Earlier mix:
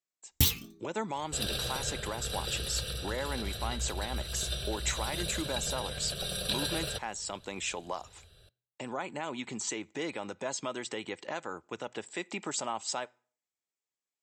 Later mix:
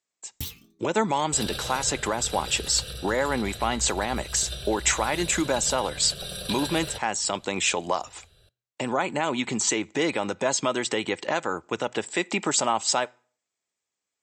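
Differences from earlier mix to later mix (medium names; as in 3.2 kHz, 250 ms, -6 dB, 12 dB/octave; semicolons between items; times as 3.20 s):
speech +11.0 dB; first sound -9.5 dB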